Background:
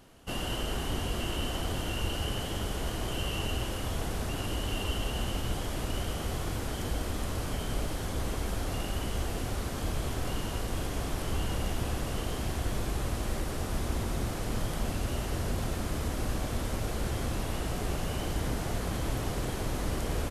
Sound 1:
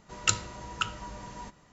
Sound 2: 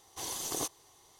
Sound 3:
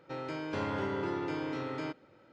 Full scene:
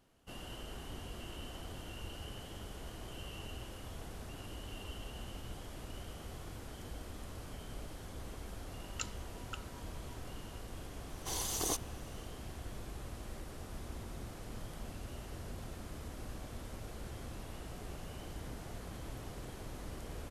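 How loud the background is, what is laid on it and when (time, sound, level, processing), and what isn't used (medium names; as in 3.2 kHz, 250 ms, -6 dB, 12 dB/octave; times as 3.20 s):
background -13.5 dB
8.72 s: add 1 -16 dB
11.09 s: add 2 -0.5 dB
not used: 3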